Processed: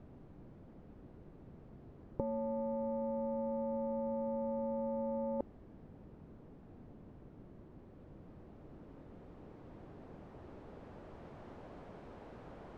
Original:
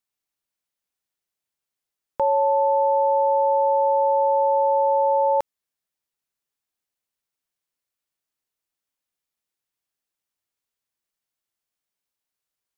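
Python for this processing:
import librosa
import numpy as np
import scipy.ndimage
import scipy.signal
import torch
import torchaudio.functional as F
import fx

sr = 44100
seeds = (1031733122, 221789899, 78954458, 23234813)

y = fx.delta_mod(x, sr, bps=64000, step_db=-42.0)
y = fx.over_compress(y, sr, threshold_db=-26.0, ratio=-0.5)
y = fx.filter_sweep_lowpass(y, sr, from_hz=280.0, to_hz=590.0, start_s=7.75, end_s=11.5, q=0.72)
y = F.gain(torch.from_numpy(y), 4.0).numpy()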